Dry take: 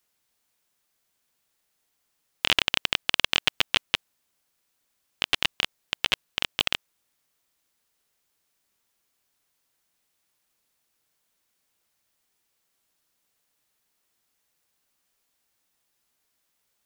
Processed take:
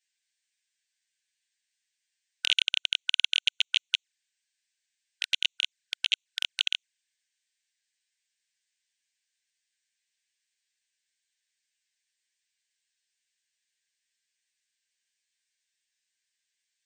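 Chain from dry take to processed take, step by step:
linear-phase brick-wall band-pass 1,500–9,000 Hz
flanger swept by the level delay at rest 10.2 ms, full sweep at −28 dBFS

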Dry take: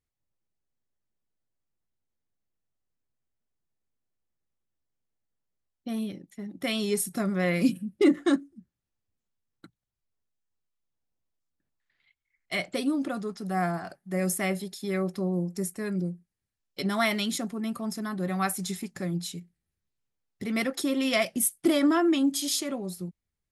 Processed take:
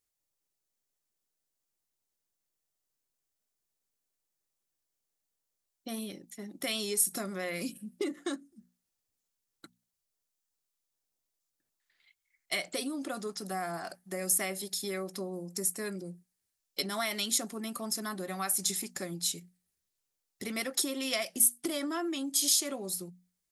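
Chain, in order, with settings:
downward compressor 6 to 1, threshold −30 dBFS, peak gain reduction 13.5 dB
bass and treble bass −9 dB, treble +10 dB
mains-hum notches 60/120/180/240 Hz

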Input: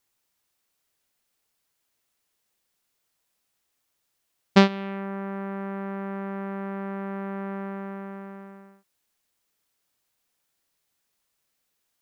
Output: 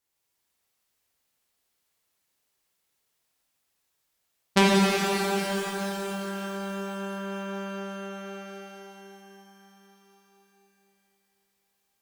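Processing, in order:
harmonic generator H 3 −11 dB, 5 −24 dB, 6 −45 dB, 8 −39 dB, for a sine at −2.5 dBFS
reverb with rising layers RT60 4 s, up +12 semitones, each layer −8 dB, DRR −7 dB
level −1 dB

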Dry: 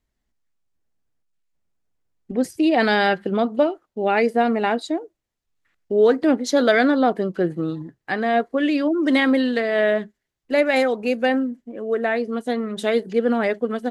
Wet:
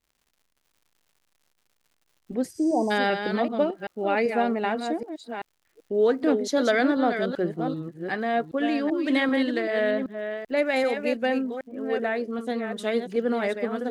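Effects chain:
delay that plays each chunk backwards 387 ms, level −7 dB
0:02.57–0:02.88: healed spectral selection 1,100–9,100 Hz before
0:09.91–0:10.57: high-frequency loss of the air 130 metres
surface crackle 170 per second −47 dBFS
level −5.5 dB

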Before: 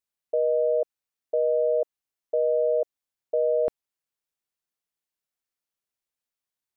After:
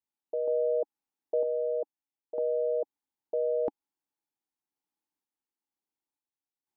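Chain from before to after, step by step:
sample-and-hold tremolo 2.1 Hz, depth 65%
hollow resonant body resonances 290/830 Hz, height 16 dB, ringing for 25 ms
level −6 dB

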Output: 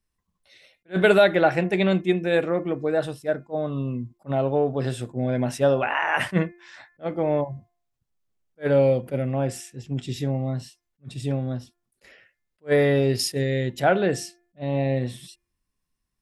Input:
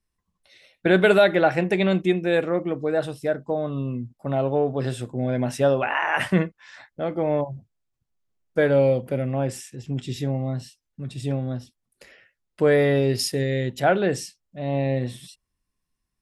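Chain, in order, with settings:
hum removal 349.2 Hz, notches 7
level that may rise only so fast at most 420 dB per second

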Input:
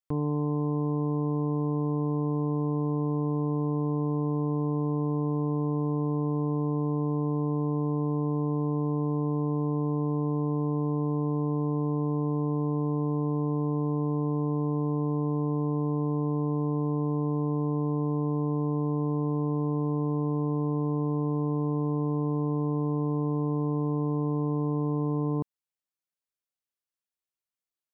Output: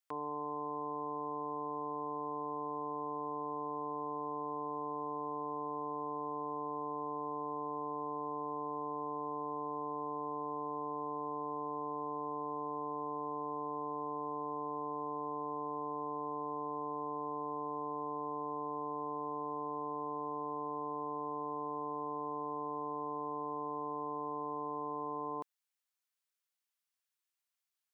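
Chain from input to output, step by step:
high-pass filter 930 Hz 12 dB per octave
level +3.5 dB

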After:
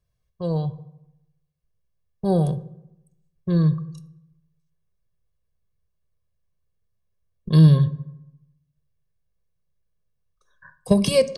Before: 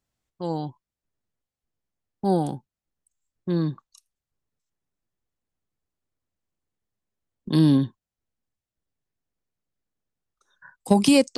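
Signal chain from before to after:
low-shelf EQ 230 Hz +11.5 dB
notch filter 7,400 Hz, Q 5.1
comb filter 1.8 ms, depth 93%
on a send: convolution reverb RT60 0.90 s, pre-delay 3 ms, DRR 12 dB
on the sum: level −3.5 dB

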